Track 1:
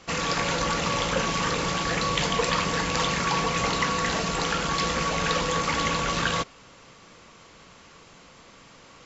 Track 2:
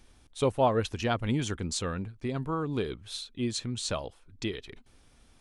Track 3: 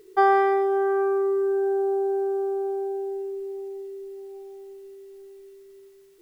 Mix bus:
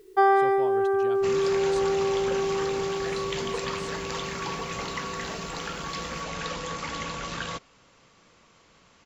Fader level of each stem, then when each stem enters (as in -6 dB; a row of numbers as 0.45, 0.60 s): -8.0, -14.0, -1.0 dB; 1.15, 0.00, 0.00 s